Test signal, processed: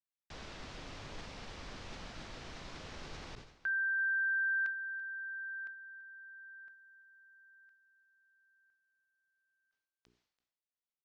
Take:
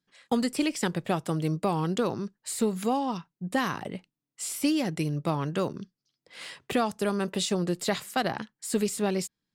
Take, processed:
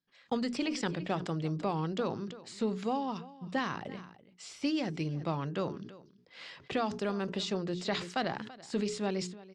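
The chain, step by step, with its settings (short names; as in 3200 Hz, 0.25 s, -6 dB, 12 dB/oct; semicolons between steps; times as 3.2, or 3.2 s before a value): LPF 5700 Hz 24 dB/oct; notches 60/120/180/240/300/360/420 Hz; on a send: echo 0.335 s -19 dB; on the sum: sustainer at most 86 dB/s; gain -5.5 dB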